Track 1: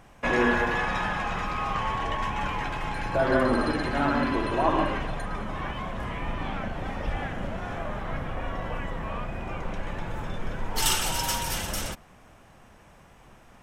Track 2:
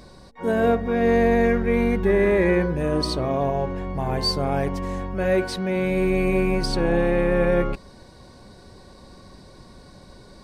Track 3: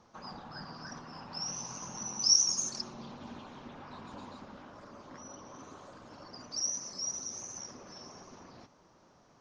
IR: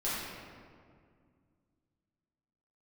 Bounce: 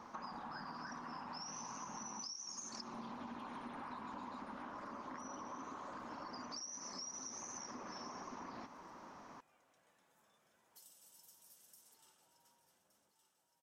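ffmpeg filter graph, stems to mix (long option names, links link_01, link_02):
-filter_complex "[0:a]highpass=220,equalizer=frequency=2500:width_type=o:width=1.2:gain=-7.5,volume=-19.5dB,asplit=2[link_01][link_02];[link_02]volume=-22.5dB[link_03];[2:a]equalizer=frequency=125:width_type=o:width=1:gain=-4,equalizer=frequency=250:width_type=o:width=1:gain=9,equalizer=frequency=1000:width_type=o:width=1:gain=11,equalizer=frequency=2000:width_type=o:width=1:gain=7,equalizer=frequency=8000:width_type=o:width=1:gain=3,acompressor=threshold=-35dB:ratio=6,volume=0dB[link_04];[link_01]aderivative,acompressor=threshold=-60dB:ratio=10,volume=0dB[link_05];[link_03]aecho=0:1:1166|2332|3498|4664|5830:1|0.36|0.13|0.0467|0.0168[link_06];[link_04][link_05][link_06]amix=inputs=3:normalize=0,acompressor=threshold=-46dB:ratio=4"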